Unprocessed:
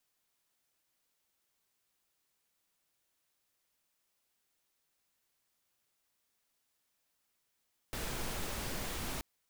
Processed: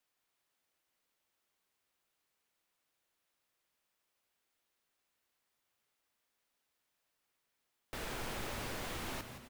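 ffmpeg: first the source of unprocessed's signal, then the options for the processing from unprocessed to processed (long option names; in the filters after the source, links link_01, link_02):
-f lavfi -i "anoisesrc=color=pink:amplitude=0.061:duration=1.28:sample_rate=44100:seed=1"
-filter_complex "[0:a]bass=frequency=250:gain=-5,treble=frequency=4000:gain=-6,asplit=7[link_01][link_02][link_03][link_04][link_05][link_06][link_07];[link_02]adelay=169,afreqshift=-130,volume=-9dB[link_08];[link_03]adelay=338,afreqshift=-260,volume=-14.5dB[link_09];[link_04]adelay=507,afreqshift=-390,volume=-20dB[link_10];[link_05]adelay=676,afreqshift=-520,volume=-25.5dB[link_11];[link_06]adelay=845,afreqshift=-650,volume=-31.1dB[link_12];[link_07]adelay=1014,afreqshift=-780,volume=-36.6dB[link_13];[link_01][link_08][link_09][link_10][link_11][link_12][link_13]amix=inputs=7:normalize=0"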